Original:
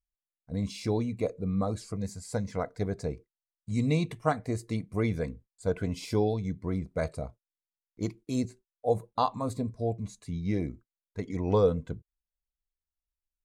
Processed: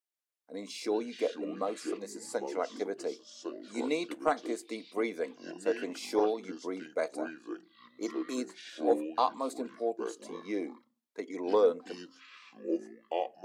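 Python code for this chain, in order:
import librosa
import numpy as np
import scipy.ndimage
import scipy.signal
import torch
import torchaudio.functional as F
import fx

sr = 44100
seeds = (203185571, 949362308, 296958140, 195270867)

y = fx.echo_pitch(x, sr, ms=134, semitones=-6, count=2, db_per_echo=-6.0)
y = scipy.signal.sosfilt(scipy.signal.butter(6, 280.0, 'highpass', fs=sr, output='sos'), y)
y = 10.0 ** (-12.0 / 20.0) * np.tanh(y / 10.0 ** (-12.0 / 20.0))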